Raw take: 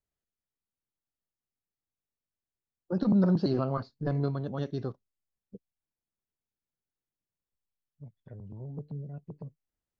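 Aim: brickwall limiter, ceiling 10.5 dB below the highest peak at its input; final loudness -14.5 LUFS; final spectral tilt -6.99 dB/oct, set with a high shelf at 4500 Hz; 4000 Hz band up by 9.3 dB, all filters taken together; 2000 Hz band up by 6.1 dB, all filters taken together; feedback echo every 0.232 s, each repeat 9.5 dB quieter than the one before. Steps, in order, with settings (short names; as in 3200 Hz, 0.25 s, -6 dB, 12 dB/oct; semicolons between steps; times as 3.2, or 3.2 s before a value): bell 2000 Hz +7 dB; bell 4000 Hz +7 dB; high shelf 4500 Hz +3.5 dB; limiter -24.5 dBFS; feedback echo 0.232 s, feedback 33%, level -9.5 dB; gain +21.5 dB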